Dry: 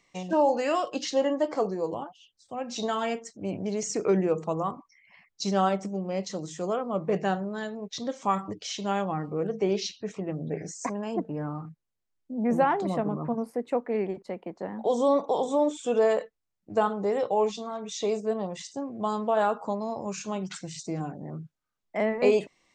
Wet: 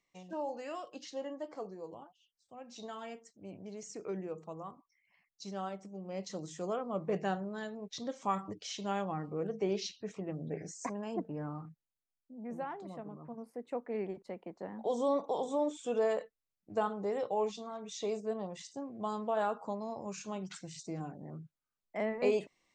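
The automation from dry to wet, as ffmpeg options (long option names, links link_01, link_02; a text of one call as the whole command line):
ffmpeg -i in.wav -af "volume=2dB,afade=type=in:start_time=5.88:duration=0.49:silence=0.375837,afade=type=out:start_time=11.58:duration=0.82:silence=0.316228,afade=type=in:start_time=13.29:duration=0.78:silence=0.354813" out.wav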